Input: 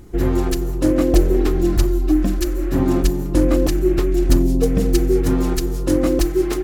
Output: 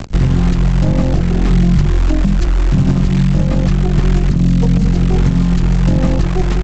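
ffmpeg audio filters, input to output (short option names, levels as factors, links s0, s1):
-filter_complex "[0:a]aeval=exprs='0.668*(cos(1*acos(clip(val(0)/0.668,-1,1)))-cos(1*PI/2))+0.335*(cos(2*acos(clip(val(0)/0.668,-1,1)))-cos(2*PI/2))':c=same,lowshelf=f=230:t=q:w=3:g=12,aresample=16000,acrusher=bits=5:dc=4:mix=0:aa=0.000001,aresample=44100,acrossover=split=130|3700[s0][s1][s2];[s0]acompressor=threshold=0.251:ratio=4[s3];[s1]acompressor=threshold=0.355:ratio=4[s4];[s2]acompressor=threshold=0.01:ratio=4[s5];[s3][s4][s5]amix=inputs=3:normalize=0,alimiter=level_in=1.78:limit=0.891:release=50:level=0:latency=1,volume=0.708"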